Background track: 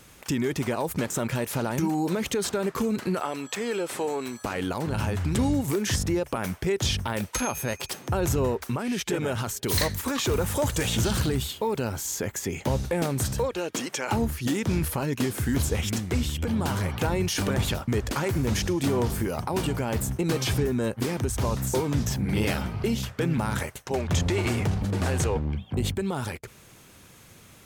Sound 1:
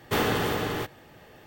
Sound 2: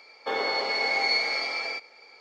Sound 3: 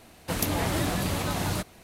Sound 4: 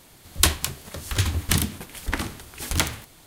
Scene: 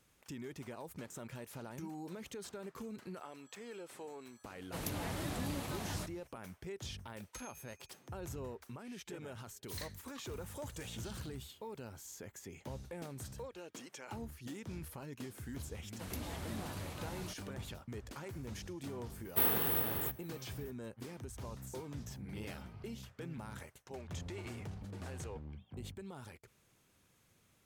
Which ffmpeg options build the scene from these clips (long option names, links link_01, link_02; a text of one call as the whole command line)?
ffmpeg -i bed.wav -i cue0.wav -i cue1.wav -i cue2.wav -filter_complex "[3:a]asplit=2[link_01][link_02];[0:a]volume=-19.5dB[link_03];[1:a]aexciter=amount=10.5:drive=5.1:freq=9700[link_04];[link_01]atrim=end=1.83,asetpts=PTS-STARTPTS,volume=-13dB,afade=type=in:duration=0.004:curve=hsin,afade=type=out:start_time=1.826:duration=0.004:curve=hsin,adelay=4440[link_05];[link_02]atrim=end=1.83,asetpts=PTS-STARTPTS,volume=-17.5dB,afade=type=in:duration=0.004:curve=hsin,afade=type=out:start_time=1.826:duration=0.004:curve=hsin,adelay=15710[link_06];[link_04]atrim=end=1.46,asetpts=PTS-STARTPTS,volume=-13dB,afade=type=in:duration=0.004:curve=hsin,afade=type=out:start_time=1.456:duration=0.004:curve=hsin,adelay=19250[link_07];[link_03][link_05][link_06][link_07]amix=inputs=4:normalize=0" out.wav